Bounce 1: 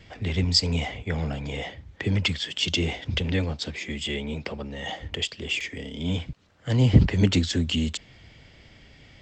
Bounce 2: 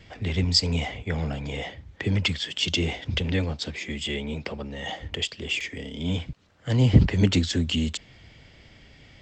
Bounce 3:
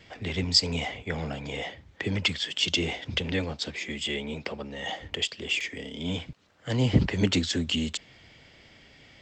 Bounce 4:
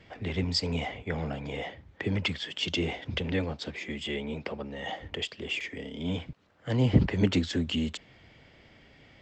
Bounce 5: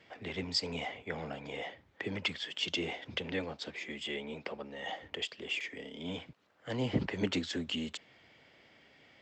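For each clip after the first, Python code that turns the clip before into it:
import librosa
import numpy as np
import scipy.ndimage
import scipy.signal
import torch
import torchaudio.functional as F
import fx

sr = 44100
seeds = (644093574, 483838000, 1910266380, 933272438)

y1 = x
y2 = fx.low_shelf(y1, sr, hz=140.0, db=-11.0)
y3 = fx.high_shelf(y2, sr, hz=3400.0, db=-12.0)
y4 = fx.highpass(y3, sr, hz=360.0, slope=6)
y4 = F.gain(torch.from_numpy(y4), -3.0).numpy()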